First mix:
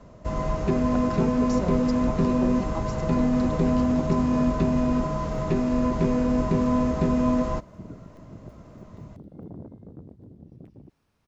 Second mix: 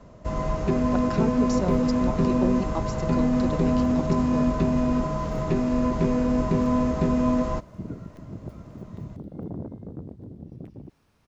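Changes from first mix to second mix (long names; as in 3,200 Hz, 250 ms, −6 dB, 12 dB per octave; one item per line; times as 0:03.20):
speech +4.0 dB
second sound +6.0 dB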